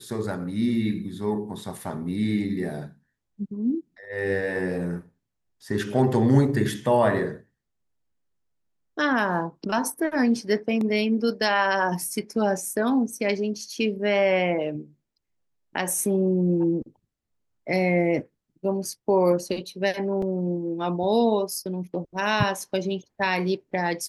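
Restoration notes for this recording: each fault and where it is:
20.22 gap 3.5 ms

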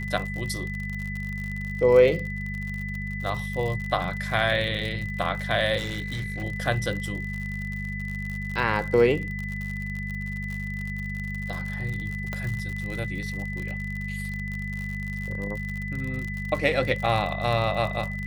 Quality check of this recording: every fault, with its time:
crackle 64/s -31 dBFS
hum 50 Hz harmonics 4 -33 dBFS
tone 2000 Hz -34 dBFS
5.77–6.44 clipped -26 dBFS
12.33 pop -17 dBFS

